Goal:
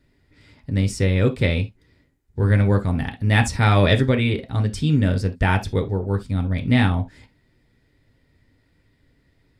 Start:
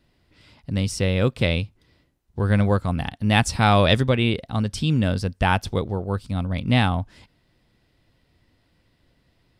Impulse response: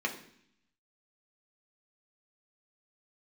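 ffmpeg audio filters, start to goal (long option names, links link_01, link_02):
-filter_complex "[0:a]asplit=2[link_01][link_02];[1:a]atrim=start_sample=2205,atrim=end_sample=3528,lowshelf=frequency=93:gain=12[link_03];[link_02][link_03]afir=irnorm=-1:irlink=0,volume=-8.5dB[link_04];[link_01][link_04]amix=inputs=2:normalize=0"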